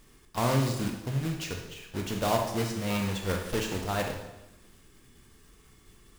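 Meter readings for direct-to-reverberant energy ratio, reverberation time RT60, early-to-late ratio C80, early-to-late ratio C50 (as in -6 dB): 2.0 dB, 0.95 s, 7.5 dB, 4.5 dB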